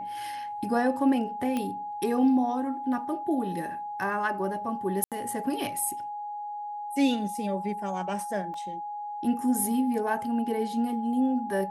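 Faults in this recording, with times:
whistle 830 Hz −33 dBFS
0:01.57: click −17 dBFS
0:05.04–0:05.12: drop-out 77 ms
0:08.54: drop-out 2.4 ms

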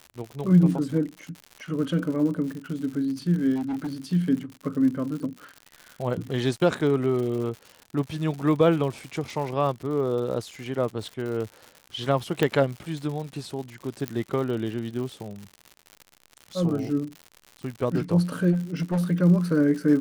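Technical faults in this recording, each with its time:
surface crackle 110 per second −33 dBFS
0:03.55–0:03.93: clipping −25.5 dBFS
0:06.79–0:06.80: drop-out 6.6 ms
0:12.43: click −10 dBFS
0:14.08: click −13 dBFS
0:18.52–0:19.04: clipping −21 dBFS

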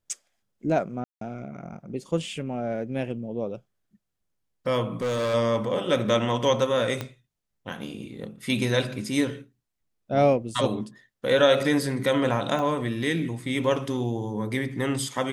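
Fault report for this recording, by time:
0:01.04–0:01.21: drop-out 173 ms
0:05.01–0:05.35: clipping −23.5 dBFS
0:07.01: click −15 dBFS
0:12.59: drop-out 2.5 ms

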